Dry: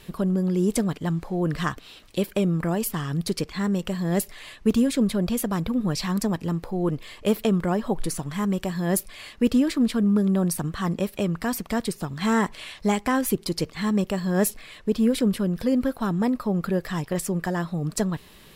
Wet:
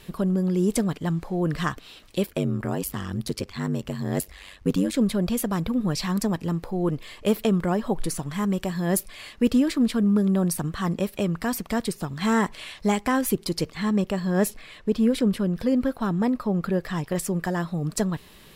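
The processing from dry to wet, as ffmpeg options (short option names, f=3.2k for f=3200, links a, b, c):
-filter_complex "[0:a]asettb=1/sr,asplit=3[a][b][c];[a]atrim=end=2.264[d];[b]atrim=start=2.26:end=4.94,asetpts=PTS-STARTPTS,afade=t=in:d=0.004:c=qsin,afade=t=out:st=2.676:d=0.004:c=qsin,aeval=exprs='val(0)*sin(2*PI*48*n/s)':c=same[e];[c]atrim=start=4.936[f];[d][e]acrossfade=d=0.004:c1=hsin:c2=qsin[g];[g][f]acrossfade=d=0.004:c1=qsin:c2=hsin,asettb=1/sr,asplit=3[h][i][j];[h]atrim=end=13.774[k];[i]atrim=start=13.77:end=17.05,asetpts=PTS-STARTPTS,afade=t=in:d=0.004:c=qsin,afade=t=out:st=3.276:d=0.004:c=qsin,highshelf=f=6.4k:g=-6[l];[j]atrim=start=17.046[m];[k][l]acrossfade=d=0.004:c1=hsin:c2=qsin[n];[n][m]acrossfade=d=0.004:c1=qsin:c2=hsin"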